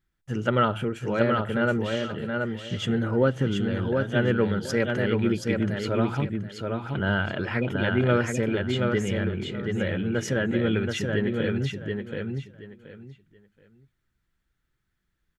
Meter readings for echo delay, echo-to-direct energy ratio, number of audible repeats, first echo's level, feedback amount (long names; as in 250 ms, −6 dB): 727 ms, −4.0 dB, 3, −4.0 dB, 22%